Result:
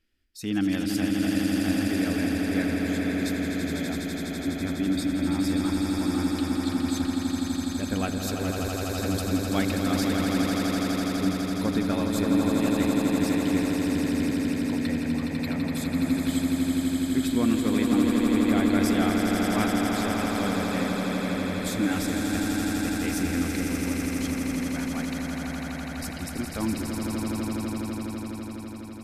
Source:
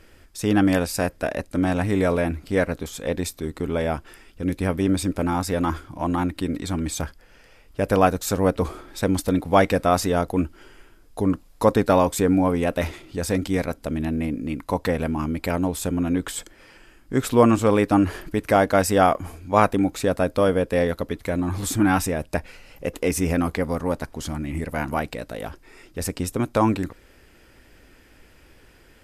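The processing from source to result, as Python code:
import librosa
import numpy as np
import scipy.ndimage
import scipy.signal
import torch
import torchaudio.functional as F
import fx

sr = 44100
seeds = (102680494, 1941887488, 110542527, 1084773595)

y = fx.graphic_eq(x, sr, hz=(125, 250, 500, 1000, 4000, 8000), db=(-8, 5, -10, -10, 5, -4))
y = fx.noise_reduce_blind(y, sr, reduce_db=16)
y = fx.echo_swell(y, sr, ms=83, loudest=8, wet_db=-6.0)
y = F.gain(torch.from_numpy(y), -6.0).numpy()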